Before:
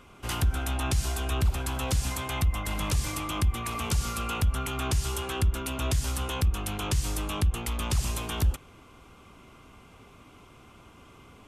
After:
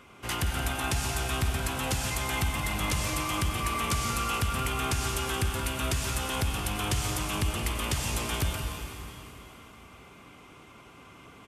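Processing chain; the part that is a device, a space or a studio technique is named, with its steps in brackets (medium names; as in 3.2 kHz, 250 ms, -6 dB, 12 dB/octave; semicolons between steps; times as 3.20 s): PA in a hall (high-pass 110 Hz 6 dB/octave; peaking EQ 2 kHz +4 dB 0.56 oct; delay 175 ms -11 dB; reverberation RT60 3.4 s, pre-delay 87 ms, DRR 3 dB)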